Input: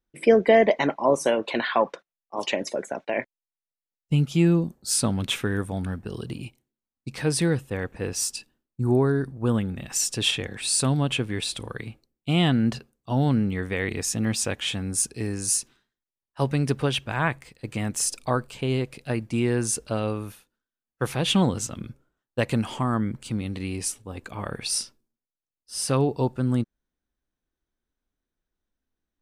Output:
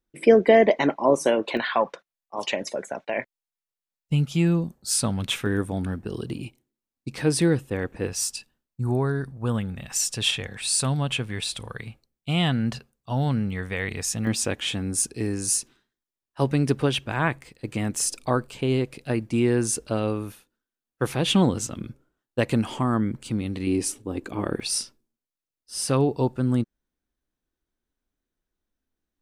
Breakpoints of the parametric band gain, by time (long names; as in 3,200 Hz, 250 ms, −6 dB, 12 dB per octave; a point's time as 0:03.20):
parametric band 320 Hz 1 octave
+3.5 dB
from 0:01.57 −4 dB
from 0:05.46 +4.5 dB
from 0:08.07 −7 dB
from 0:14.27 +4 dB
from 0:23.67 +13.5 dB
from 0:24.60 +2 dB